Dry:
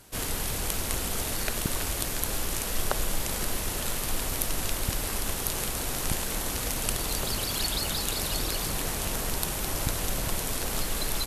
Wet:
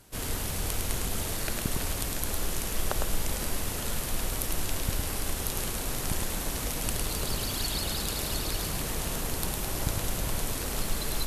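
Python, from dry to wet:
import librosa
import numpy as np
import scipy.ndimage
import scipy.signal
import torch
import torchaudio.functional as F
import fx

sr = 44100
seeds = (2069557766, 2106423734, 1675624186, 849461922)

y = fx.low_shelf(x, sr, hz=330.0, db=3.5)
y = y + 10.0 ** (-4.0 / 20.0) * np.pad(y, (int(106 * sr / 1000.0), 0))[:len(y)]
y = F.gain(torch.from_numpy(y), -4.0).numpy()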